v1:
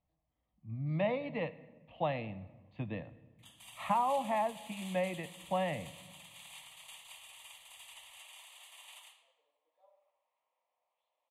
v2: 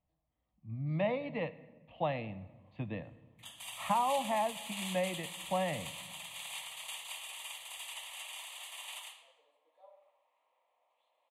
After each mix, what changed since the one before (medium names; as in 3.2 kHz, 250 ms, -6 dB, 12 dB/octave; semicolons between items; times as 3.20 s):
background +8.5 dB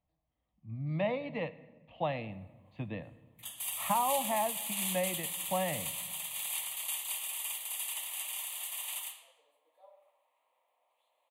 master: remove distance through air 71 m